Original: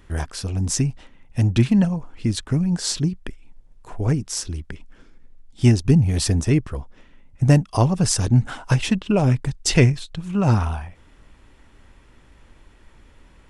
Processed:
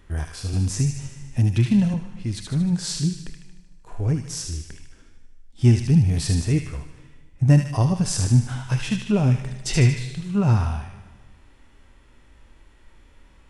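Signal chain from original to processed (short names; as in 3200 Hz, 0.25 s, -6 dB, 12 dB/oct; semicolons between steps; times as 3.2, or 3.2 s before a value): on a send: thin delay 76 ms, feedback 55%, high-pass 1600 Hz, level -6.5 dB; on the sum: harmonic-percussive split percussive -10 dB; plate-style reverb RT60 1.5 s, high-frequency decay 0.9×, DRR 14 dB; 0.53–1.94 three-band squash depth 40%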